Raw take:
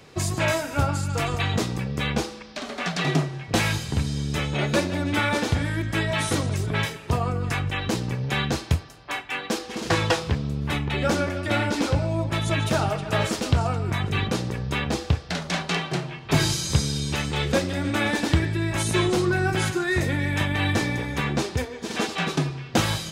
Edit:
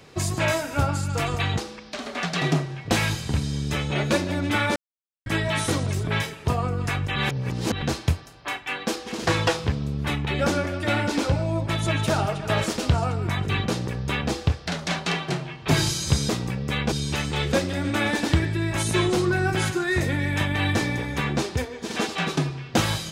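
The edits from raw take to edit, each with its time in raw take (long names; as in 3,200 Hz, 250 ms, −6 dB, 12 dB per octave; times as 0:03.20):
0:01.58–0:02.21: move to 0:16.92
0:05.39–0:05.89: silence
0:07.79–0:08.45: reverse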